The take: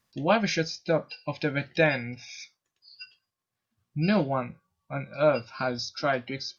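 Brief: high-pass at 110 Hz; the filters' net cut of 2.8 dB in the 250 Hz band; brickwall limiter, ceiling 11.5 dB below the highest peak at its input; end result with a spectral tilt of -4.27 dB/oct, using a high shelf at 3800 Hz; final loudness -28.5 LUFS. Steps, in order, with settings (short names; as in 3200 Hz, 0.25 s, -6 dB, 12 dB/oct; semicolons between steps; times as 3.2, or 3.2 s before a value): HPF 110 Hz; bell 250 Hz -3.5 dB; high shelf 3800 Hz +4 dB; gain +4 dB; limiter -16 dBFS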